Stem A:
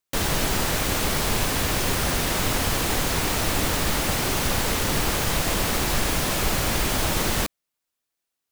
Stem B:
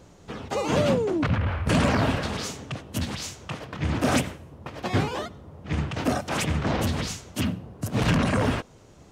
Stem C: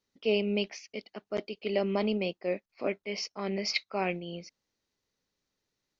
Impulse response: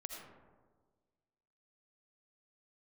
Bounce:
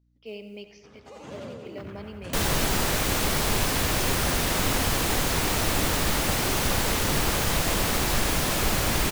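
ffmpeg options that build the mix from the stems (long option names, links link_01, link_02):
-filter_complex "[0:a]adelay=2200,volume=-1dB[link_01];[1:a]adelay=550,volume=-19dB,asplit=2[link_02][link_03];[link_03]volume=-3.5dB[link_04];[2:a]acrusher=bits=8:mode=log:mix=0:aa=0.000001,aeval=exprs='val(0)+0.00224*(sin(2*PI*60*n/s)+sin(2*PI*2*60*n/s)/2+sin(2*PI*3*60*n/s)/3+sin(2*PI*4*60*n/s)/4+sin(2*PI*5*60*n/s)/5)':channel_layout=same,volume=-14dB,asplit=3[link_05][link_06][link_07];[link_06]volume=-7.5dB[link_08];[link_07]volume=-12dB[link_09];[3:a]atrim=start_sample=2205[link_10];[link_08][link_10]afir=irnorm=-1:irlink=0[link_11];[link_04][link_09]amix=inputs=2:normalize=0,aecho=0:1:90|180|270|360|450|540|630|720|810:1|0.59|0.348|0.205|0.121|0.0715|0.0422|0.0249|0.0147[link_12];[link_01][link_02][link_05][link_11][link_12]amix=inputs=5:normalize=0"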